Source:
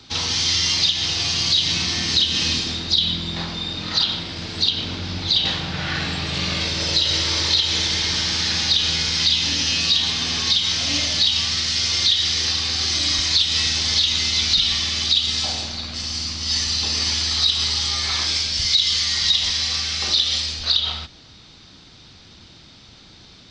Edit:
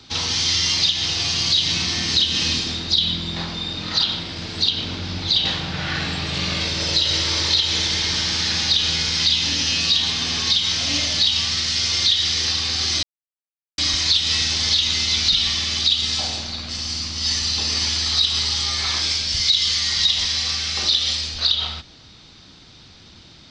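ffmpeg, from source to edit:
ffmpeg -i in.wav -filter_complex "[0:a]asplit=2[link_01][link_02];[link_01]atrim=end=13.03,asetpts=PTS-STARTPTS,afade=type=out:start_time=13.026:duration=0.004:curve=hsin,apad=pad_dur=0.75[link_03];[link_02]atrim=start=13.03,asetpts=PTS-STARTPTS,afade=type=in:duration=0.004:curve=hsin[link_04];[link_03][link_04]concat=n=2:v=0:a=1" out.wav

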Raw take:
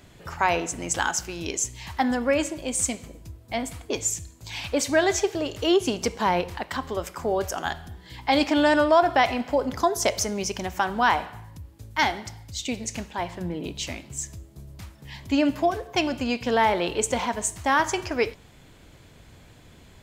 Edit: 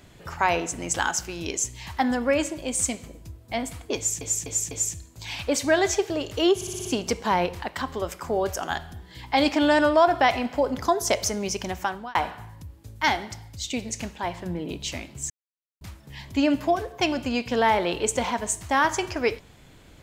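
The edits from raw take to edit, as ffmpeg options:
ffmpeg -i in.wav -filter_complex "[0:a]asplit=12[link_01][link_02][link_03][link_04][link_05][link_06][link_07][link_08][link_09][link_10][link_11][link_12];[link_01]atrim=end=4.212[link_13];[link_02]atrim=start=3.958:end=4.212[link_14];[link_03]atrim=start=3.958:end=4.212[link_15];[link_04]atrim=start=3.958:end=5.862[link_16];[link_05]atrim=start=5.798:end=5.862[link_17];[link_06]atrim=start=5.798:end=5.862[link_18];[link_07]atrim=start=5.798:end=5.862[link_19];[link_08]atrim=start=5.798:end=5.862[link_20];[link_09]atrim=start=5.798:end=11.1,asetpts=PTS-STARTPTS,afade=type=out:start_time=4.912:duration=0.39[link_21];[link_10]atrim=start=11.1:end=14.25,asetpts=PTS-STARTPTS,afade=type=in:duration=0.004:curve=hsin,afade=type=out:start_time=3.146:duration=0.004:curve=hsin[link_22];[link_11]atrim=start=14.25:end=14.76,asetpts=PTS-STARTPTS,volume=0[link_23];[link_12]atrim=start=14.76,asetpts=PTS-STARTPTS,afade=type=in:duration=0.004:curve=hsin[link_24];[link_13][link_14]acrossfade=duration=0.004:curve1=hsin:curve2=hsin[link_25];[link_25][link_15]acrossfade=duration=0.004:curve1=hsin:curve2=hsin[link_26];[link_26][link_16]acrossfade=duration=0.004:curve1=hsin:curve2=hsin[link_27];[link_27][link_17]acrossfade=duration=0.004:curve1=hsin:curve2=hsin[link_28];[link_28][link_18]acrossfade=duration=0.004:curve1=hsin:curve2=hsin[link_29];[link_29][link_19]acrossfade=duration=0.004:curve1=hsin:curve2=hsin[link_30];[link_30][link_20]acrossfade=duration=0.004:curve1=hsin:curve2=hsin[link_31];[link_21][link_22][link_23][link_24]concat=n=4:v=0:a=1[link_32];[link_31][link_32]acrossfade=duration=0.004:curve1=hsin:curve2=hsin" out.wav

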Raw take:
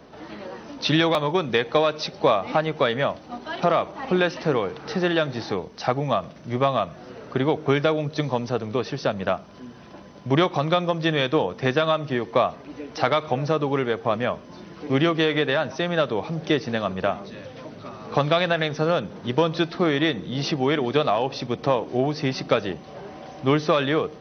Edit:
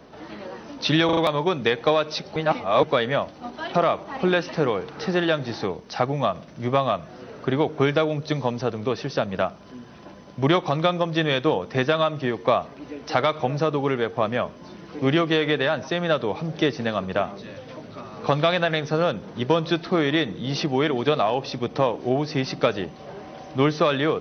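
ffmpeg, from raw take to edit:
ffmpeg -i in.wav -filter_complex "[0:a]asplit=6[link_01][link_02][link_03][link_04][link_05][link_06];[link_01]atrim=end=1.092[link_07];[link_02]atrim=start=1.048:end=1.092[link_08];[link_03]atrim=start=1.048:end=1.092[link_09];[link_04]atrim=start=1.048:end=2.242[link_10];[link_05]atrim=start=2.238:end=2.712,asetpts=PTS-STARTPTS,areverse[link_11];[link_06]atrim=start=2.708[link_12];[link_07][link_08]acrossfade=duration=0.004:curve1=hsin:curve2=hsin[link_13];[link_13][link_09]acrossfade=duration=0.004:curve1=hsin:curve2=hsin[link_14];[link_14][link_10]acrossfade=duration=0.004:curve1=hsin:curve2=hsin[link_15];[link_15][link_11]acrossfade=duration=0.004:curve1=hsin:curve2=hsin[link_16];[link_16][link_12]acrossfade=duration=0.004:curve1=hsin:curve2=hsin" out.wav

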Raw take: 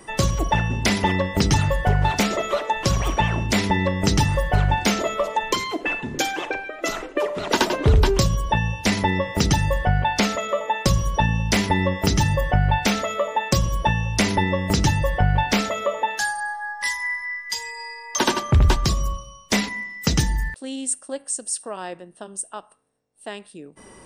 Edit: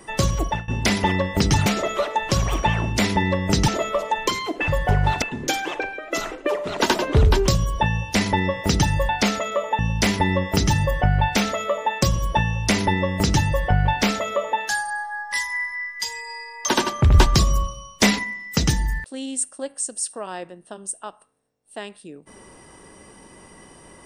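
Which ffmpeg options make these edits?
ffmpeg -i in.wav -filter_complex "[0:a]asplit=10[link_01][link_02][link_03][link_04][link_05][link_06][link_07][link_08][link_09][link_10];[link_01]atrim=end=0.68,asetpts=PTS-STARTPTS,afade=type=out:start_time=0.41:duration=0.27:silence=0.0794328[link_11];[link_02]atrim=start=0.68:end=1.662,asetpts=PTS-STARTPTS,afade=type=in:duration=0.004:curve=hsin:silence=0.0794328[link_12];[link_03]atrim=start=2.198:end=4.222[link_13];[link_04]atrim=start=4.928:end=5.932[link_14];[link_05]atrim=start=1.658:end=2.202[link_15];[link_06]atrim=start=5.928:end=9.802[link_16];[link_07]atrim=start=10.058:end=10.762[link_17];[link_08]atrim=start=11.288:end=18.642[link_18];[link_09]atrim=start=18.638:end=19.742,asetpts=PTS-STARTPTS,volume=4dB[link_19];[link_10]atrim=start=19.738[link_20];[link_11][link_12]concat=n=2:v=0:a=1[link_21];[link_21][link_13]acrossfade=duration=0.004:curve1=hsin:curve2=hsin[link_22];[link_22][link_14]acrossfade=duration=0.004:curve1=hsin:curve2=hsin[link_23];[link_23][link_15]acrossfade=duration=0.004:curve1=hsin:curve2=hsin[link_24];[link_24][link_16]acrossfade=duration=0.004:curve1=hsin:curve2=hsin[link_25];[link_25][link_17]acrossfade=duration=0.004:curve1=hsin:curve2=hsin[link_26];[link_26][link_18]acrossfade=duration=0.004:curve1=hsin:curve2=hsin[link_27];[link_27][link_19]acrossfade=duration=0.004:curve1=hsin:curve2=hsin[link_28];[link_28][link_20]acrossfade=duration=0.004:curve1=hsin:curve2=hsin" out.wav

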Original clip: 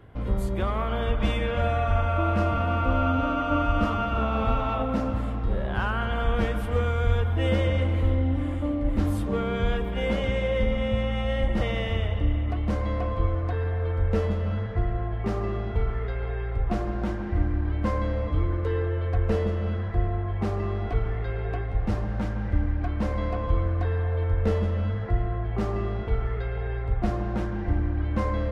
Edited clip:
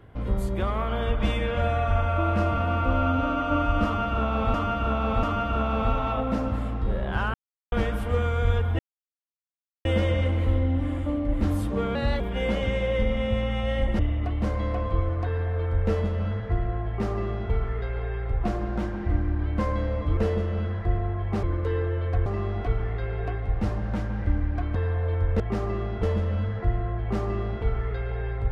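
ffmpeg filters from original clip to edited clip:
ffmpeg -i in.wav -filter_complex "[0:a]asplit=15[link_01][link_02][link_03][link_04][link_05][link_06][link_07][link_08][link_09][link_10][link_11][link_12][link_13][link_14][link_15];[link_01]atrim=end=4.542[link_16];[link_02]atrim=start=3.848:end=4.542[link_17];[link_03]atrim=start=3.848:end=5.96,asetpts=PTS-STARTPTS,afade=type=out:start_time=2.108:duration=0.004:curve=hsin[link_18];[link_04]atrim=start=5.96:end=6.34,asetpts=PTS-STARTPTS,volume=0[link_19];[link_05]atrim=start=6.34:end=7.41,asetpts=PTS-STARTPTS,afade=type=in:duration=0.004:curve=hsin,afade=type=out:start_time=1.066:duration=0.004:curve=hsin,apad=pad_dur=1.06[link_20];[link_06]atrim=start=7.41:end=9.514,asetpts=PTS-STARTPTS,afade=type=in:duration=0.004:curve=hsin[link_21];[link_07]atrim=start=9.51:end=9.81,asetpts=PTS-STARTPTS,asetrate=52920,aresample=44100[link_22];[link_08]atrim=start=9.806:end=11.602[link_23];[link_09]atrim=start=12.248:end=18.432[link_24];[link_10]atrim=start=19.258:end=20.522[link_25];[link_11]atrim=start=18.428:end=19.262[link_26];[link_12]atrim=start=20.518:end=23.012[link_27];[link_13]atrim=start=23.838:end=24.492[link_28];[link_14]atrim=start=15.138:end=15.772[link_29];[link_15]atrim=start=24.488[link_30];[link_16][link_17]acrossfade=duration=0.004:curve1=hsin:curve2=hsin[link_31];[link_18][link_19][link_20][link_21]concat=n=4:v=0:a=1[link_32];[link_31][link_32]acrossfade=duration=0.004:curve1=hsin:curve2=hsin[link_33];[link_33][link_22]acrossfade=duration=0.004:curve1=hsin:curve2=hsin[link_34];[link_34][link_23]acrossfade=duration=0.004:curve1=hsin:curve2=hsin[link_35];[link_35][link_24]acrossfade=duration=0.004:curve1=hsin:curve2=hsin[link_36];[link_36][link_25]acrossfade=duration=0.004:curve1=hsin:curve2=hsin[link_37];[link_37][link_26]acrossfade=duration=0.004:curve1=hsin:curve2=hsin[link_38];[link_38][link_27]acrossfade=duration=0.004:curve1=hsin:curve2=hsin[link_39];[link_39][link_28]acrossfade=duration=0.004:curve1=hsin:curve2=hsin[link_40];[link_40][link_29]acrossfade=duration=0.004:curve1=hsin:curve2=hsin[link_41];[link_41][link_30]acrossfade=duration=0.004:curve1=hsin:curve2=hsin" out.wav

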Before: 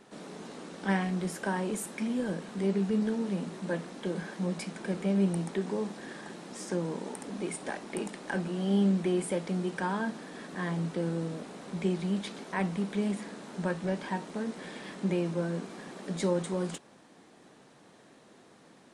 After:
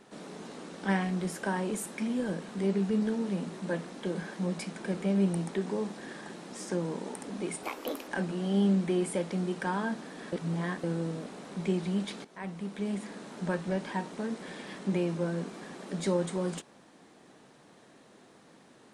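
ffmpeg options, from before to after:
ffmpeg -i in.wav -filter_complex "[0:a]asplit=6[link_01][link_02][link_03][link_04][link_05][link_06];[link_01]atrim=end=7.634[link_07];[link_02]atrim=start=7.63:end=8.24,asetpts=PTS-STARTPTS,asetrate=60417,aresample=44100[link_08];[link_03]atrim=start=8.236:end=10.492[link_09];[link_04]atrim=start=10.488:end=11.002,asetpts=PTS-STARTPTS,areverse[link_10];[link_05]atrim=start=10.998:end=12.41,asetpts=PTS-STARTPTS,afade=type=out:start_time=1.408:duration=0.004:curve=hsin:silence=0.199526[link_11];[link_06]atrim=start=12.41,asetpts=PTS-STARTPTS,afade=type=in:duration=0.99:silence=0.199526[link_12];[link_07][link_08]acrossfade=duration=0.004:curve1=hsin:curve2=hsin[link_13];[link_13][link_09]acrossfade=duration=0.004:curve1=hsin:curve2=hsin[link_14];[link_14][link_10]acrossfade=duration=0.004:curve1=hsin:curve2=hsin[link_15];[link_11][link_12]concat=n=2:v=0:a=1[link_16];[link_15][link_16]acrossfade=duration=0.004:curve1=hsin:curve2=hsin" out.wav

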